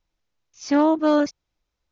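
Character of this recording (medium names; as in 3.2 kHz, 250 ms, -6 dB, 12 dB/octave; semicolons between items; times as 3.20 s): noise floor -80 dBFS; spectral tilt -2.5 dB/octave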